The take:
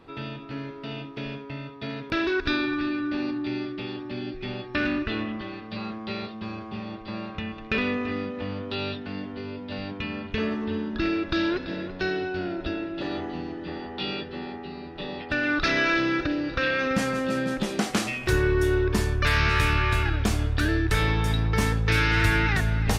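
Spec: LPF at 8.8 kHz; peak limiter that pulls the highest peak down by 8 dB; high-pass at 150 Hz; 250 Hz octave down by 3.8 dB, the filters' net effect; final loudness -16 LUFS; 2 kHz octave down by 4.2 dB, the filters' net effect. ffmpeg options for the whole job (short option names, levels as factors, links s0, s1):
-af "highpass=150,lowpass=8800,equalizer=f=250:t=o:g=-4.5,equalizer=f=2000:t=o:g=-5.5,volume=6.31,alimiter=limit=0.631:level=0:latency=1"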